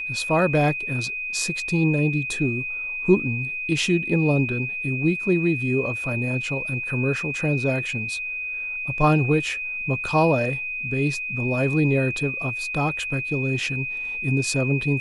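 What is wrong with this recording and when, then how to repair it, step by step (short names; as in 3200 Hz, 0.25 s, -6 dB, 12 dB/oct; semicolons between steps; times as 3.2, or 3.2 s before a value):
tone 2500 Hz -27 dBFS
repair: notch 2500 Hz, Q 30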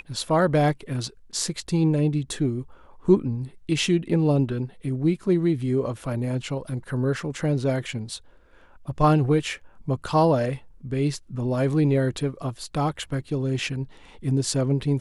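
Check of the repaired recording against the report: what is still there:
none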